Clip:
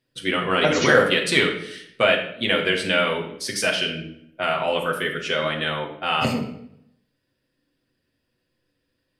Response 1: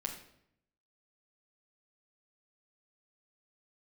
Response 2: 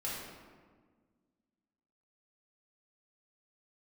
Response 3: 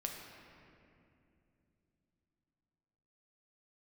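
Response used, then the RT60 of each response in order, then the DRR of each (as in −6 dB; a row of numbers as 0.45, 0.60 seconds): 1; 0.70, 1.6, 2.7 seconds; −0.5, −7.0, 0.5 decibels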